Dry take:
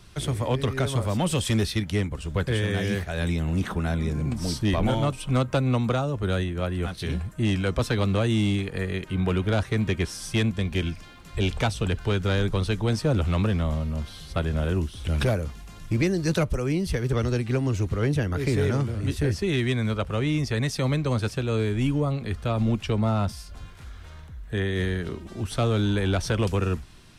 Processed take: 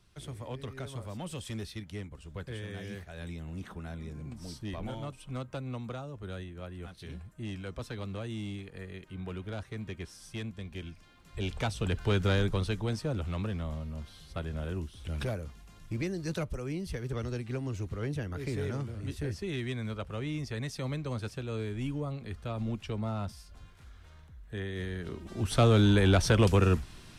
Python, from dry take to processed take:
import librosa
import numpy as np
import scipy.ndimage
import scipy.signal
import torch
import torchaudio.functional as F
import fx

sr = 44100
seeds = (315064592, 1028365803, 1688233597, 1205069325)

y = fx.gain(x, sr, db=fx.line((10.89, -15.0), (12.21, -2.0), (13.16, -10.5), (24.89, -10.5), (25.57, 1.0)))